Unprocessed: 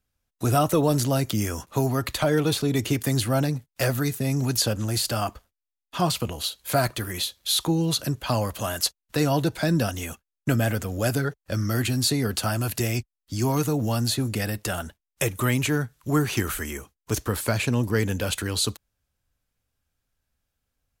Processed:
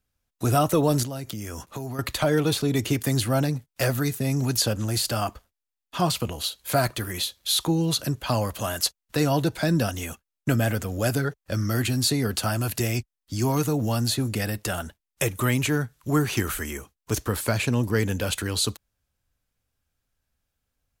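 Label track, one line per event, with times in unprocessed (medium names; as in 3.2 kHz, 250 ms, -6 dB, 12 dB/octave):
1.030000	1.990000	compression 4:1, threshold -31 dBFS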